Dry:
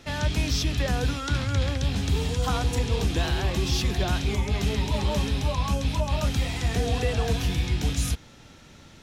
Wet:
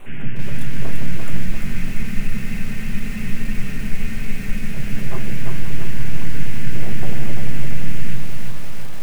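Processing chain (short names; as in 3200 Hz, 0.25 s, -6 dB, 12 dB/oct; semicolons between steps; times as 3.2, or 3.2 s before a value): formant sharpening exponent 3; band noise 1500–3000 Hz -40 dBFS; full-wave rectifier; Butterworth band-stop 4900 Hz, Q 0.89; reverb RT60 0.30 s, pre-delay 5 ms, DRR 4.5 dB; spectral freeze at 1.46, 3.30 s; lo-fi delay 0.342 s, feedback 55%, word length 6-bit, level -4 dB; gain -1 dB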